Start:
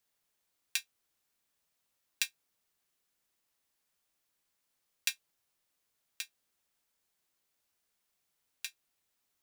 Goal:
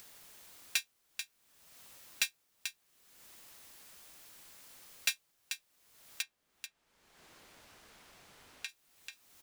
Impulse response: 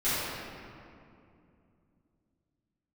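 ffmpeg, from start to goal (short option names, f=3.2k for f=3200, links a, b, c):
-filter_complex "[0:a]asplit=3[a][b][c];[a]afade=t=out:st=6.21:d=0.02[d];[b]aemphasis=mode=reproduction:type=75kf,afade=t=in:st=6.21:d=0.02,afade=t=out:st=8.68:d=0.02[e];[c]afade=t=in:st=8.68:d=0.02[f];[d][e][f]amix=inputs=3:normalize=0,aecho=1:1:439:0.282,acompressor=mode=upward:threshold=-44dB:ratio=2.5,asoftclip=type=tanh:threshold=-24.5dB,volume=5dB"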